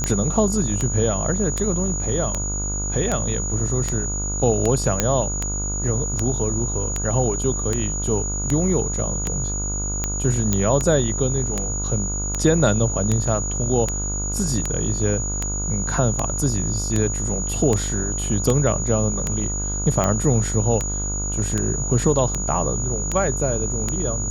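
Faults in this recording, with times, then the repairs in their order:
buzz 50 Hz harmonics 30 -27 dBFS
tick 78 rpm -8 dBFS
tone 6800 Hz -26 dBFS
5 pop -2 dBFS
10.53 pop -5 dBFS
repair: de-click; de-hum 50 Hz, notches 30; notch 6800 Hz, Q 30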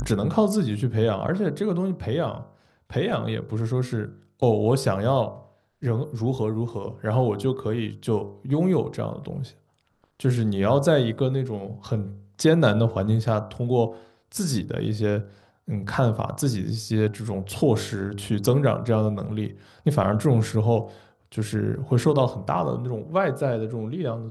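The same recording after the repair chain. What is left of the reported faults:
none

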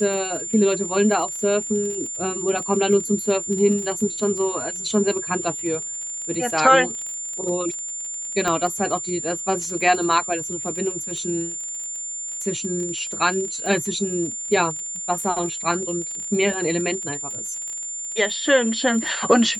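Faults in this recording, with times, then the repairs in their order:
crackle 34/s -29 dBFS
tone 7200 Hz -28 dBFS
8.48 pop -10 dBFS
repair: de-click; notch 7200 Hz, Q 30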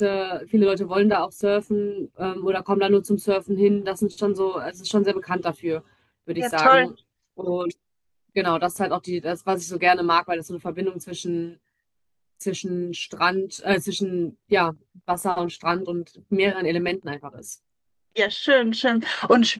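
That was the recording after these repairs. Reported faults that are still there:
8.48 pop

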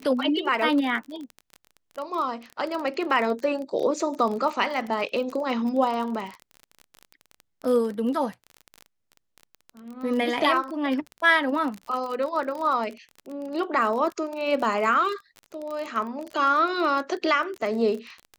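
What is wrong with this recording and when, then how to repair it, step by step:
crackle 30/s -30 dBFS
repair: de-click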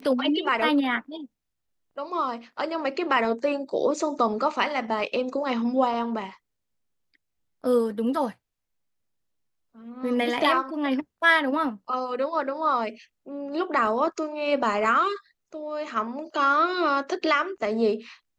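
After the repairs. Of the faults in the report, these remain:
none

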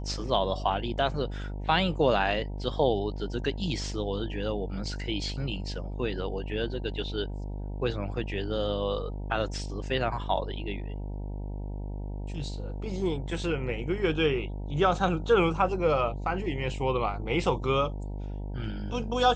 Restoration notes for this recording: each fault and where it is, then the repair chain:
buzz 50 Hz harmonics 19 -35 dBFS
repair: de-hum 50 Hz, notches 19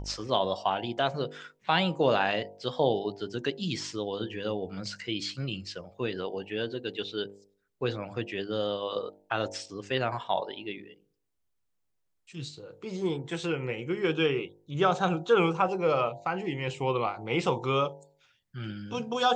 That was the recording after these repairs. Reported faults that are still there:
none

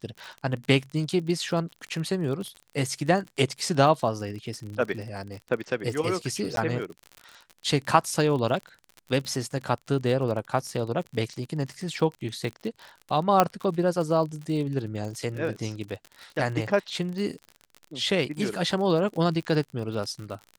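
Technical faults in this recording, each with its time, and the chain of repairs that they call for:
crackle 45/s -33 dBFS
6.56–6.57 gap 12 ms
13.4 pop -5 dBFS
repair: de-click; interpolate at 6.56, 12 ms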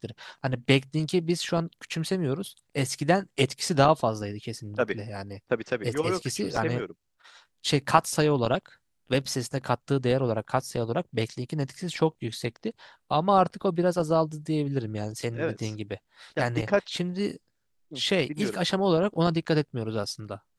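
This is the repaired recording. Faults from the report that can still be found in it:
none

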